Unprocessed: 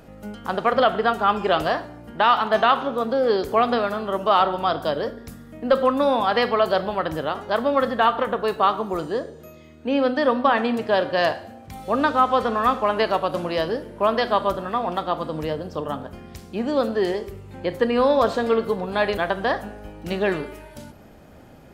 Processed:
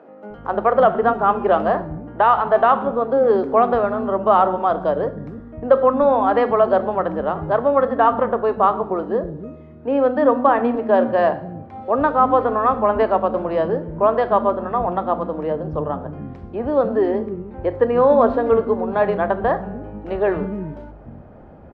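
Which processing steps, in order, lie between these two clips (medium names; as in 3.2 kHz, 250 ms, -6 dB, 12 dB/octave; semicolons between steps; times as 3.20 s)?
low-pass 1.1 kHz 12 dB/octave; bands offset in time highs, lows 300 ms, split 260 Hz; trim +5.5 dB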